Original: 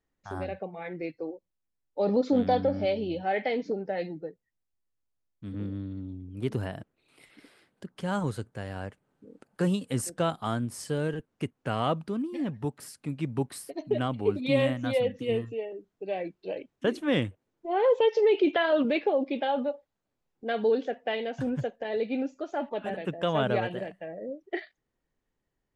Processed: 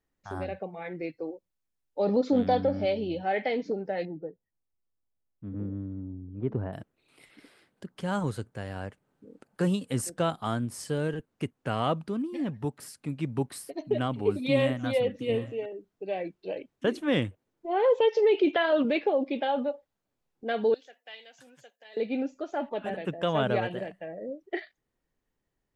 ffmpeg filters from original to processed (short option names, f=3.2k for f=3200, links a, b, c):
-filter_complex "[0:a]asettb=1/sr,asplit=3[a][b][c];[a]atrim=end=4.054[d];[b]atrim=start=4.05:end=6.73,asetpts=PTS-STARTPTS,afade=t=in:d=0.004:c=qsin,afade=t=out:st=2.676:d=0.004:c=qsin,lowpass=1.1k[e];[c]atrim=start=6.726[f];[d][e]acrossfade=d=0.004:c1=hsin:c2=qsin[g];[g][f]acrossfade=d=0.004:c1=qsin:c2=hsin,asettb=1/sr,asplit=3[h][i][j];[h]atrim=end=13.284[k];[i]atrim=start=13.28:end=15.66,asetpts=PTS-STARTPTS,afade=t=in:d=0.004:c=qsin,afade=t=out:st=2.376:d=0.004:c=qsin,aecho=1:1:786:0.1,atrim=end_sample=104958[l];[j]atrim=start=15.656[m];[k][l]acrossfade=d=0.004:c1=hsin:c2=qsin[n];[n][m]acrossfade=d=0.004:c1=qsin:c2=hsin,asettb=1/sr,asplit=3[o][p][q];[o]atrim=end=20.744[r];[p]atrim=start=20.74:end=21.97,asetpts=PTS-STARTPTS,afade=t=in:d=0.004:c=qsin,afade=t=out:st=1.226:d=0.004:c=qsin,aderivative[s];[q]atrim=start=21.966[t];[r][s]acrossfade=d=0.004:c1=hsin:c2=qsin[u];[u][t]acrossfade=d=0.004:c1=qsin:c2=hsin"